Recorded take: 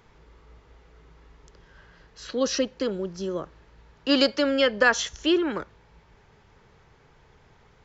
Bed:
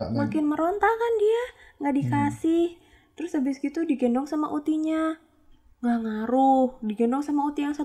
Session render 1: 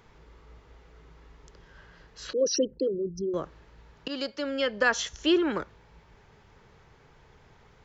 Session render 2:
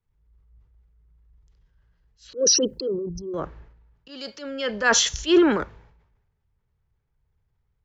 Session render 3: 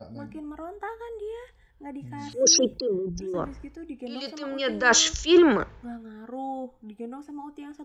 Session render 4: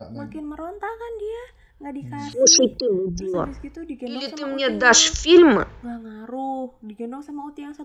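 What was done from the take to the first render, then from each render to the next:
0:02.33–0:03.34: spectral envelope exaggerated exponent 3; 0:04.08–0:05.53: fade in, from −16 dB
transient designer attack −6 dB, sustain +7 dB; multiband upward and downward expander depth 100%
mix in bed −14 dB
level +5.5 dB; brickwall limiter −2 dBFS, peak gain reduction 1 dB

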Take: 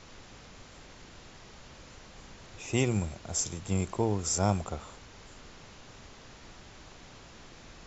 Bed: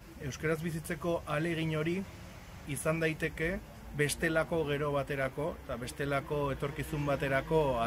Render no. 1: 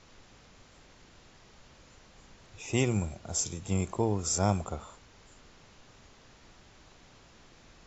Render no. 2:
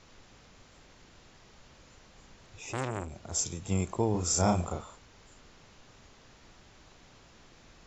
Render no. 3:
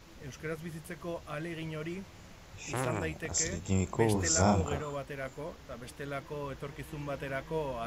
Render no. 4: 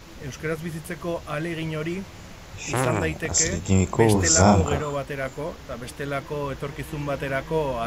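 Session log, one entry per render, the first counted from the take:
noise reduction from a noise print 6 dB
0:02.59–0:03.32: saturating transformer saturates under 1,400 Hz; 0:04.11–0:04.81: double-tracking delay 34 ms −3 dB
mix in bed −6 dB
level +10 dB; brickwall limiter −3 dBFS, peak gain reduction 1 dB

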